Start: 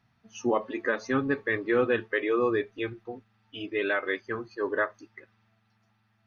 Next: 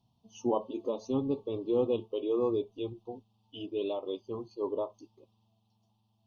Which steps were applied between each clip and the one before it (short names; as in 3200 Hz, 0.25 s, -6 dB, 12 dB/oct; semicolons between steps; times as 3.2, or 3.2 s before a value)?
elliptic band-stop 1000–3000 Hz, stop band 50 dB; dynamic EQ 5100 Hz, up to -5 dB, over -58 dBFS, Q 1.3; gain -2.5 dB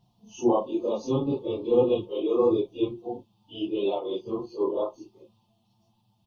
phase scrambler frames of 0.1 s; comb 5.7 ms, depth 40%; gain +6 dB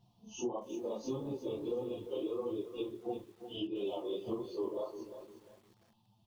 compressor 16:1, threshold -32 dBFS, peak gain reduction 17.5 dB; flange 1.6 Hz, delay 8.1 ms, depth 5.8 ms, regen -35%; lo-fi delay 0.35 s, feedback 35%, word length 10-bit, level -10.5 dB; gain +1.5 dB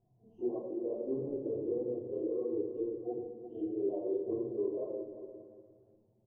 synth low-pass 510 Hz, resonance Q 3.7; outdoor echo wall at 100 m, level -18 dB; shoebox room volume 3300 m³, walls furnished, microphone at 3.2 m; gain -7.5 dB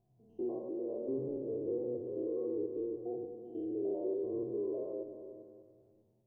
stepped spectrum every 0.1 s